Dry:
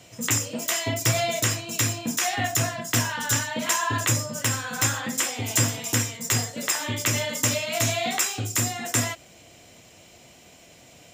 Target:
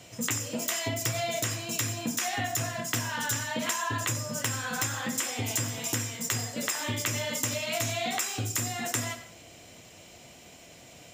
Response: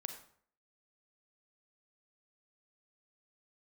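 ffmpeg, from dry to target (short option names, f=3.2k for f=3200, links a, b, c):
-filter_complex "[0:a]asplit=2[a][b];[1:a]atrim=start_sample=2205,adelay=91[c];[b][c]afir=irnorm=-1:irlink=0,volume=-13dB[d];[a][d]amix=inputs=2:normalize=0,acompressor=threshold=-27dB:ratio=6"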